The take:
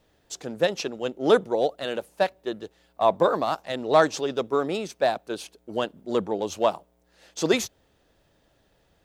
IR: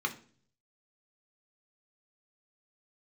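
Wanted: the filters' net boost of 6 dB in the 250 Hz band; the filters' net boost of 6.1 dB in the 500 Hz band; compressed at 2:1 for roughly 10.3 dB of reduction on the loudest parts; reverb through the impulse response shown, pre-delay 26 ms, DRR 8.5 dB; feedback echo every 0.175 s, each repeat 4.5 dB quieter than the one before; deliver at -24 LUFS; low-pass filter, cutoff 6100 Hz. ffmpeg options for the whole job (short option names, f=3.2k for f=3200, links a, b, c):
-filter_complex "[0:a]lowpass=6.1k,equalizer=f=250:t=o:g=5.5,equalizer=f=500:t=o:g=6,acompressor=threshold=-26dB:ratio=2,aecho=1:1:175|350|525|700|875|1050|1225|1400|1575:0.596|0.357|0.214|0.129|0.0772|0.0463|0.0278|0.0167|0.01,asplit=2[a][b];[1:a]atrim=start_sample=2205,adelay=26[c];[b][c]afir=irnorm=-1:irlink=0,volume=-14.5dB[d];[a][d]amix=inputs=2:normalize=0,volume=2dB"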